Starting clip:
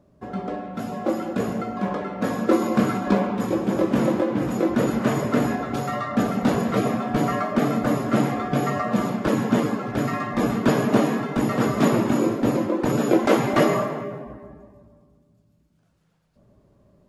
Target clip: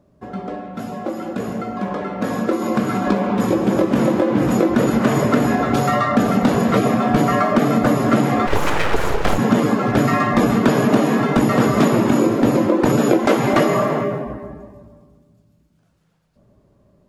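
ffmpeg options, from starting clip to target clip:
ffmpeg -i in.wav -filter_complex "[0:a]acompressor=threshold=-23dB:ratio=6,asplit=3[link_01][link_02][link_03];[link_01]afade=type=out:start_time=8.46:duration=0.02[link_04];[link_02]aeval=exprs='abs(val(0))':channel_layout=same,afade=type=in:start_time=8.46:duration=0.02,afade=type=out:start_time=9.37:duration=0.02[link_05];[link_03]afade=type=in:start_time=9.37:duration=0.02[link_06];[link_04][link_05][link_06]amix=inputs=3:normalize=0,dynaudnorm=framelen=320:gausssize=17:maxgain=11.5dB,volume=1.5dB" out.wav

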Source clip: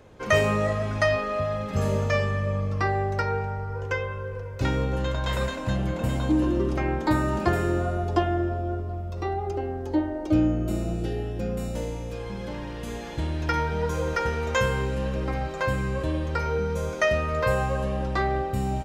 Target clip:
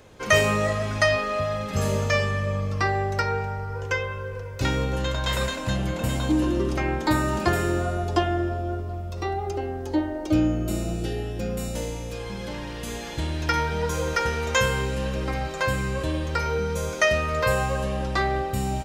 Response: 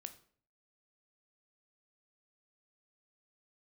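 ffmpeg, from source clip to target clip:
-af "highshelf=frequency=2300:gain=9"

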